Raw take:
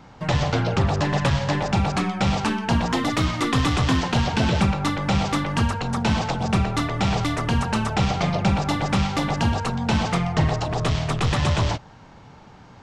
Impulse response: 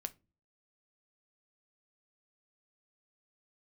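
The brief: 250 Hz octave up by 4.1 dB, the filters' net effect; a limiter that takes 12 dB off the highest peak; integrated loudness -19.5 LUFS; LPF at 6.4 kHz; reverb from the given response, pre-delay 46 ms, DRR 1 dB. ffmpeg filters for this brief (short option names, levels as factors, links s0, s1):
-filter_complex "[0:a]lowpass=6400,equalizer=f=250:t=o:g=5.5,alimiter=limit=0.126:level=0:latency=1,asplit=2[s0][s1];[1:a]atrim=start_sample=2205,adelay=46[s2];[s1][s2]afir=irnorm=-1:irlink=0,volume=1.12[s3];[s0][s3]amix=inputs=2:normalize=0,volume=1.58"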